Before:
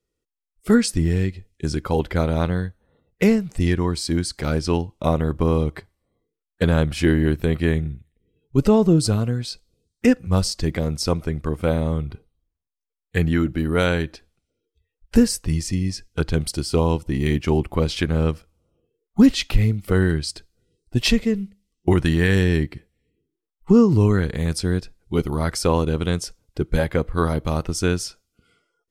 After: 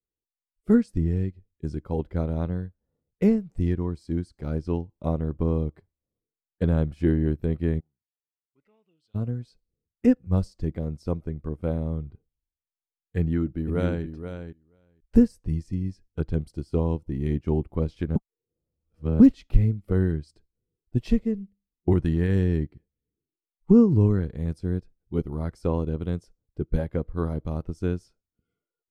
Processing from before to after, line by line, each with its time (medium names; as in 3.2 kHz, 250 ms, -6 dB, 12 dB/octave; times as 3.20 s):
7.79–9.14 s: band-pass filter 840 Hz -> 3.5 kHz, Q 7.4
13.19–14.04 s: echo throw 480 ms, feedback 10%, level -6 dB
18.16–19.20 s: reverse
whole clip: tilt shelf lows +8 dB; upward expansion 1.5:1, over -32 dBFS; trim -7.5 dB